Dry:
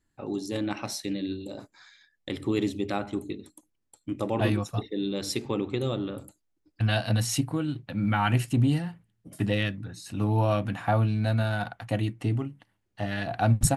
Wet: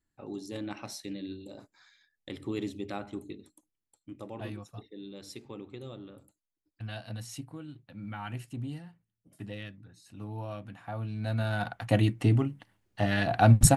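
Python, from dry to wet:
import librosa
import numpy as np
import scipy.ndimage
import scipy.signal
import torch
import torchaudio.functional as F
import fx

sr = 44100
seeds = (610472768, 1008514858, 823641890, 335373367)

y = fx.gain(x, sr, db=fx.line((3.39, -7.5), (4.43, -14.5), (10.9, -14.5), (11.32, -5.5), (11.94, 3.5)))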